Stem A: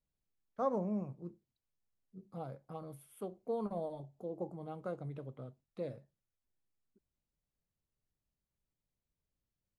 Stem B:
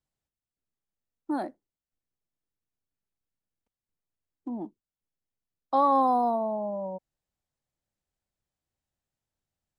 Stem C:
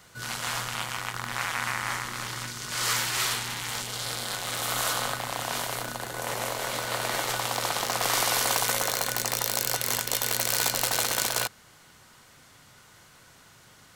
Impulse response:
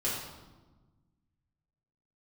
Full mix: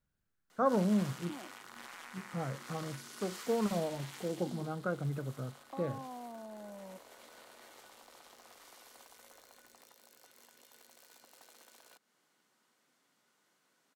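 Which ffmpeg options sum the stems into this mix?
-filter_complex "[0:a]equalizer=f=1500:t=o:w=0.57:g=14,volume=1.12[s0];[1:a]acompressor=threshold=0.0112:ratio=2.5,volume=0.237[s1];[2:a]highpass=f=230:w=0.5412,highpass=f=230:w=1.3066,acompressor=threshold=0.0282:ratio=6,alimiter=level_in=1.06:limit=0.0631:level=0:latency=1:release=21,volume=0.944,adelay=500,volume=0.251,afade=t=out:st=4.25:d=0.53:silence=0.354813[s2];[s0][s1][s2]amix=inputs=3:normalize=0,equalizer=f=140:w=0.4:g=7"

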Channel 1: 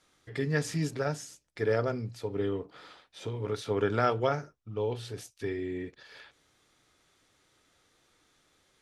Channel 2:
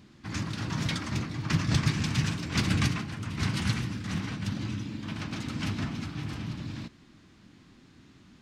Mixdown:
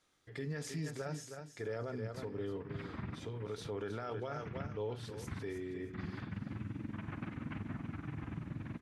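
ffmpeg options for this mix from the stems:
-filter_complex "[0:a]volume=0.422,asplit=3[s0][s1][s2];[s1]volume=0.316[s3];[1:a]acompressor=threshold=0.02:ratio=10,lowpass=f=2200:w=0.5412,lowpass=f=2200:w=1.3066,tremolo=f=21:d=0.75,adelay=1900,volume=1[s4];[s2]apad=whole_len=455109[s5];[s4][s5]sidechaincompress=threshold=0.00112:ratio=4:attack=46:release=115[s6];[s3]aecho=0:1:316|632|948:1|0.21|0.0441[s7];[s0][s6][s7]amix=inputs=3:normalize=0,alimiter=level_in=2.37:limit=0.0631:level=0:latency=1:release=29,volume=0.422"

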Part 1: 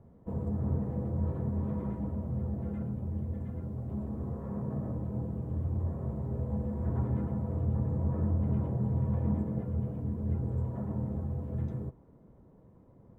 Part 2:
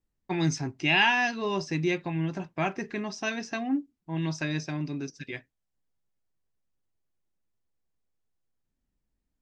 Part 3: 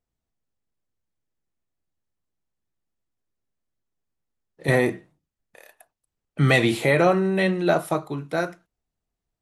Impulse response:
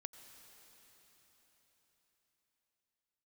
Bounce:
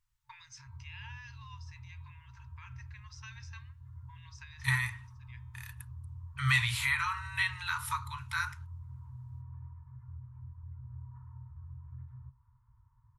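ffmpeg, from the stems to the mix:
-filter_complex "[0:a]lowpass=1500,adelay=400,volume=0.75[s0];[1:a]bandreject=f=225.9:t=h:w=4,bandreject=f=451.8:t=h:w=4,bandreject=f=677.7:t=h:w=4,bandreject=f=903.6:t=h:w=4,bandreject=f=1129.5:t=h:w=4,bandreject=f=1355.4:t=h:w=4,bandreject=f=1581.3:t=h:w=4,bandreject=f=1807.2:t=h:w=4,bandreject=f=2033.1:t=h:w=4,bandreject=f=2259:t=h:w=4,bandreject=f=2484.9:t=h:w=4,bandreject=f=2710.8:t=h:w=4,bandreject=f=2936.7:t=h:w=4,bandreject=f=3162.6:t=h:w=4,bandreject=f=3388.5:t=h:w=4,bandreject=f=3614.4:t=h:w=4,bandreject=f=3840.3:t=h:w=4,bandreject=f=4066.2:t=h:w=4,bandreject=f=4292.1:t=h:w=4,bandreject=f=4518:t=h:w=4,alimiter=limit=0.075:level=0:latency=1:release=136,volume=0.631[s1];[2:a]acompressor=threshold=0.0501:ratio=2.5,volume=1.33,asplit=2[s2][s3];[s3]apad=whole_len=415213[s4];[s1][s4]sidechaincompress=threshold=0.00501:ratio=4:attack=16:release=390[s5];[s0][s5]amix=inputs=2:normalize=0,acompressor=threshold=0.00794:ratio=6,volume=1[s6];[s2][s6]amix=inputs=2:normalize=0,afftfilt=real='re*(1-between(b*sr/4096,130,880))':imag='im*(1-between(b*sr/4096,130,880))':win_size=4096:overlap=0.75"

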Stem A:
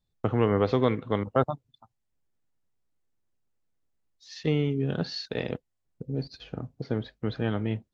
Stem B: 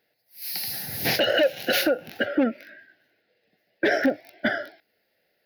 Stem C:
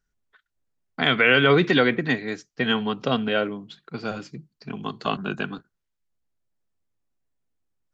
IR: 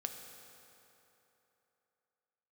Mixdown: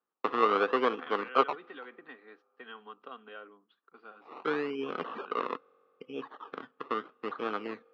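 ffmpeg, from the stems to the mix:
-filter_complex "[0:a]acrusher=samples=22:mix=1:aa=0.000001:lfo=1:lforange=13.2:lforate=0.77,volume=0.891,asplit=2[s0][s1];[s1]volume=0.0631[s2];[2:a]acompressor=threshold=0.1:ratio=6,volume=0.106[s3];[3:a]atrim=start_sample=2205[s4];[s2][s4]afir=irnorm=-1:irlink=0[s5];[s0][s3][s5]amix=inputs=3:normalize=0,highpass=f=310:w=0.5412,highpass=f=310:w=1.3066,equalizer=f=330:t=q:w=4:g=-4,equalizer=f=610:t=q:w=4:g=-7,equalizer=f=1200:t=q:w=4:g=10,equalizer=f=2200:t=q:w=4:g=-7,lowpass=f=3000:w=0.5412,lowpass=f=3000:w=1.3066"

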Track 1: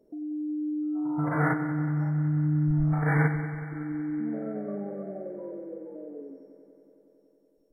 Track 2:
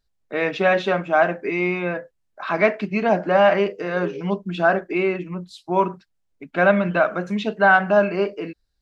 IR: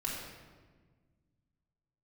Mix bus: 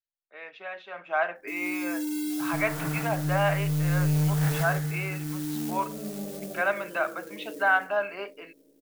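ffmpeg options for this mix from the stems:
-filter_complex "[0:a]equalizer=f=180:t=o:w=2.3:g=8.5,asoftclip=type=tanh:threshold=0.141,acrusher=bits=5:mode=log:mix=0:aa=0.000001,adelay=1350,volume=0.473,asplit=3[s0][s1][s2];[s1]volume=0.133[s3];[s2]volume=0.631[s4];[1:a]acrossover=split=520 3500:gain=0.112 1 0.0708[s5][s6][s7];[s5][s6][s7]amix=inputs=3:normalize=0,volume=0.398,afade=t=in:st=0.9:d=0.23:silence=0.281838,asplit=2[s8][s9];[s9]apad=whole_len=400383[s10];[s0][s10]sidechaincompress=threshold=0.0398:ratio=8:attack=16:release=1060[s11];[2:a]atrim=start_sample=2205[s12];[s3][s12]afir=irnorm=-1:irlink=0[s13];[s4]aecho=0:1:153:1[s14];[s11][s8][s13][s14]amix=inputs=4:normalize=0,crystalizer=i=3:c=0,adynamicequalizer=threshold=0.01:dfrequency=290:dqfactor=1.4:tfrequency=290:tqfactor=1.4:attack=5:release=100:ratio=0.375:range=2.5:mode=cutabove:tftype=bell"

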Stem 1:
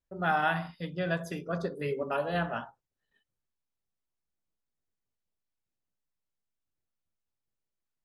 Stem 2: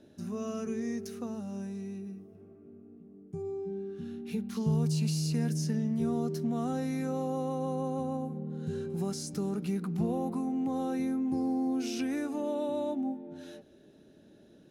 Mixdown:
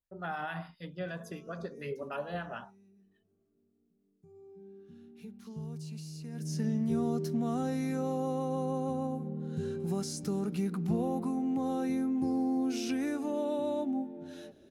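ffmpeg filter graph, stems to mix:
-filter_complex "[0:a]alimiter=limit=0.0841:level=0:latency=1:release=90,acrossover=split=1200[s0][s1];[s0]aeval=exprs='val(0)*(1-0.5/2+0.5/2*cos(2*PI*6.8*n/s))':c=same[s2];[s1]aeval=exprs='val(0)*(1-0.5/2-0.5/2*cos(2*PI*6.8*n/s))':c=same[s3];[s2][s3]amix=inputs=2:normalize=0,volume=0.631[s4];[1:a]adelay=900,afade=t=in:st=4.19:d=0.58:silence=0.354813,afade=t=in:st=6.32:d=0.36:silence=0.223872[s5];[s4][s5]amix=inputs=2:normalize=0"

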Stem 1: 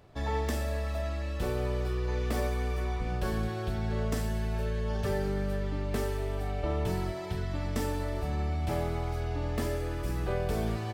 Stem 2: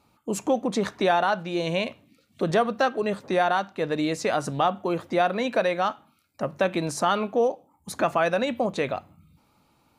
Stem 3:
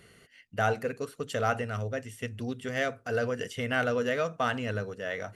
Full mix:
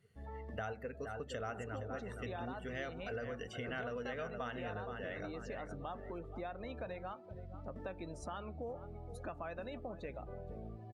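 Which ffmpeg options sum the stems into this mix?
-filter_complex "[0:a]acrossover=split=4100[s0][s1];[s1]acompressor=threshold=0.00126:ratio=4:attack=1:release=60[s2];[s0][s2]amix=inputs=2:normalize=0,volume=0.168[s3];[1:a]adelay=1250,volume=0.168,asplit=2[s4][s5];[s5]volume=0.15[s6];[2:a]volume=0.708,asplit=2[s7][s8];[s8]volume=0.355[s9];[s6][s9]amix=inputs=2:normalize=0,aecho=0:1:468|936|1404|1872|2340|2808:1|0.4|0.16|0.064|0.0256|0.0102[s10];[s3][s4][s7][s10]amix=inputs=4:normalize=0,afftdn=nr=18:nf=-48,acompressor=threshold=0.00794:ratio=3"

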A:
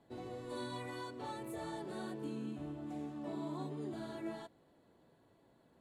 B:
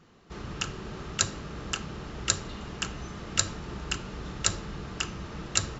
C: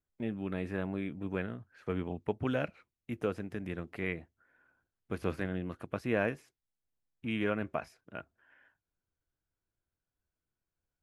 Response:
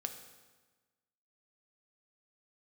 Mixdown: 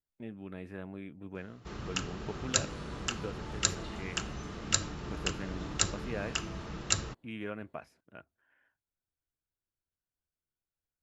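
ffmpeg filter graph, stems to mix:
-filter_complex "[0:a]adelay=2200,volume=0.398[s0];[1:a]adelay=1350,volume=0.75[s1];[2:a]volume=0.422[s2];[s0][s1][s2]amix=inputs=3:normalize=0"

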